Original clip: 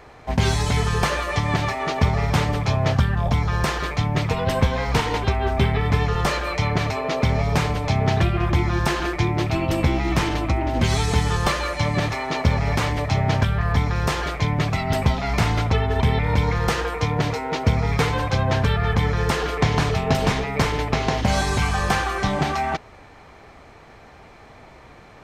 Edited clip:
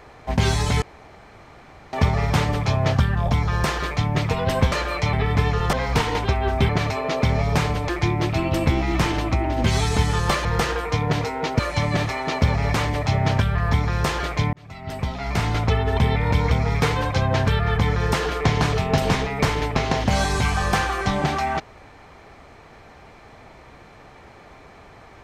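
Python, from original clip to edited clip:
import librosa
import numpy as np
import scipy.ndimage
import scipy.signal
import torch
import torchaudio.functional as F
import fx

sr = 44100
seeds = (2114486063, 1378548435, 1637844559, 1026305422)

y = fx.edit(x, sr, fx.room_tone_fill(start_s=0.82, length_s=1.11),
    fx.swap(start_s=4.72, length_s=0.96, other_s=6.28, other_length_s=0.41),
    fx.cut(start_s=7.89, length_s=1.17),
    fx.fade_in_span(start_s=14.56, length_s=1.15),
    fx.move(start_s=16.54, length_s=1.14, to_s=11.62), tone=tone)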